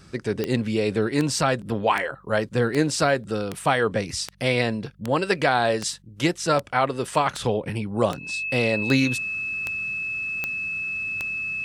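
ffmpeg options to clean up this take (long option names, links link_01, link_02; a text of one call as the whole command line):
ffmpeg -i in.wav -af "adeclick=threshold=4,bandreject=frequency=48:width_type=h:width=4,bandreject=frequency=96:width_type=h:width=4,bandreject=frequency=144:width_type=h:width=4,bandreject=frequency=192:width_type=h:width=4,bandreject=frequency=2600:width=30" out.wav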